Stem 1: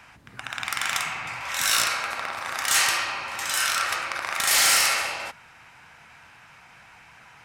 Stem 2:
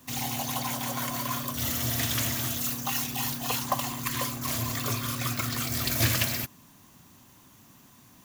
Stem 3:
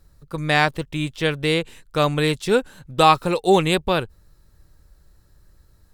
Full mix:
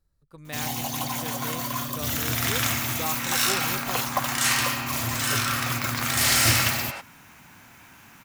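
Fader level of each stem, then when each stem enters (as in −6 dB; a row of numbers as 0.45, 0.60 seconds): −2.5, +1.5, −18.5 decibels; 1.70, 0.45, 0.00 seconds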